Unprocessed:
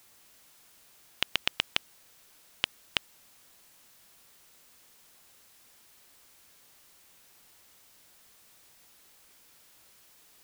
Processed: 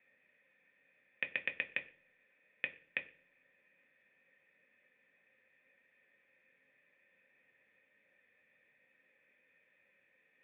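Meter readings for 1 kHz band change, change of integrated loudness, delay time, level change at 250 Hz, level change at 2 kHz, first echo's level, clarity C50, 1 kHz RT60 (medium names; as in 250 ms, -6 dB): -17.0 dB, -7.5 dB, no echo, -10.0 dB, -2.0 dB, no echo, 16.5 dB, 0.40 s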